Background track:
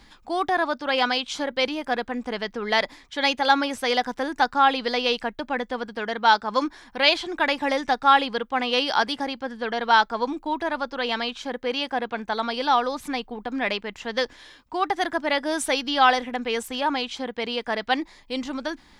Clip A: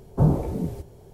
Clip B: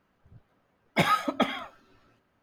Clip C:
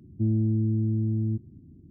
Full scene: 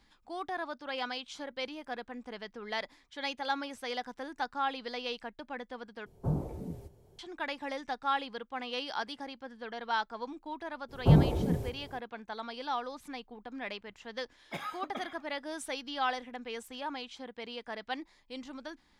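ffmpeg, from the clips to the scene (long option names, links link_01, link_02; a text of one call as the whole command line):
ffmpeg -i bed.wav -i cue0.wav -i cue1.wav -filter_complex "[1:a]asplit=2[link_01][link_02];[0:a]volume=-14dB[link_03];[2:a]lowshelf=frequency=160:gain=-6[link_04];[link_03]asplit=2[link_05][link_06];[link_05]atrim=end=6.064[link_07];[link_01]atrim=end=1.13,asetpts=PTS-STARTPTS,volume=-12.5dB[link_08];[link_06]atrim=start=7.186[link_09];[link_02]atrim=end=1.13,asetpts=PTS-STARTPTS,volume=-2dB,afade=type=in:duration=0.05,afade=type=out:start_time=1.08:duration=0.05,adelay=10880[link_10];[link_04]atrim=end=2.42,asetpts=PTS-STARTPTS,volume=-15.5dB,afade=type=in:duration=0.004:curve=hsin,afade=type=out:start_time=2.416:duration=0.004:curve=hsin,adelay=13550[link_11];[link_07][link_08]acrossfade=duration=0.004:curve1=hsin:curve2=hsin[link_12];[link_12][link_09]acrossfade=duration=0.004:curve1=hsin:curve2=hsin[link_13];[link_13][link_10][link_11]amix=inputs=3:normalize=0" out.wav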